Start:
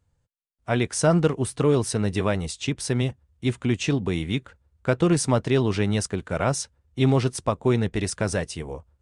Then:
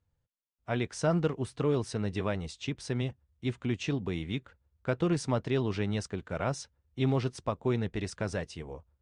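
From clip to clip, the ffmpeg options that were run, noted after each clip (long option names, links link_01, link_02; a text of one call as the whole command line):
ffmpeg -i in.wav -af "lowpass=5700,volume=-8dB" out.wav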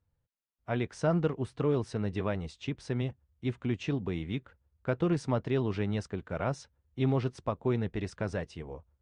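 ffmpeg -i in.wav -af "highshelf=frequency=4200:gain=-11" out.wav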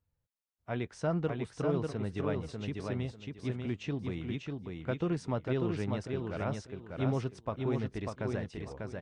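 ffmpeg -i in.wav -af "aecho=1:1:594|1188|1782:0.631|0.151|0.0363,volume=-4dB" out.wav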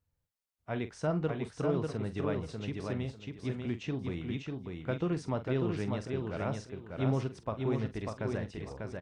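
ffmpeg -i in.wav -filter_complex "[0:a]asplit=2[link_01][link_02];[link_02]adelay=45,volume=-12dB[link_03];[link_01][link_03]amix=inputs=2:normalize=0" out.wav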